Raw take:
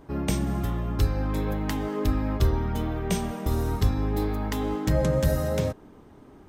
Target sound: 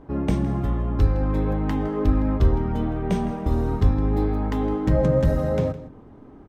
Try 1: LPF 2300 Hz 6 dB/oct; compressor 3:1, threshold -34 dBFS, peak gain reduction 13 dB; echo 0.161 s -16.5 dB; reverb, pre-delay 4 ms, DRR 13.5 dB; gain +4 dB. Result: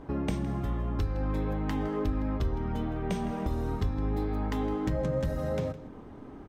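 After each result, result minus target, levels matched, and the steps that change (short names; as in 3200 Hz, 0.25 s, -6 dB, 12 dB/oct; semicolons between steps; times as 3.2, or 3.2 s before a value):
compressor: peak gain reduction +13 dB; 2000 Hz band +4.0 dB
remove: compressor 3:1, threshold -34 dBFS, peak gain reduction 13 dB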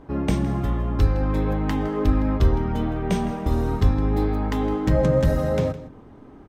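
2000 Hz band +3.5 dB
change: LPF 1100 Hz 6 dB/oct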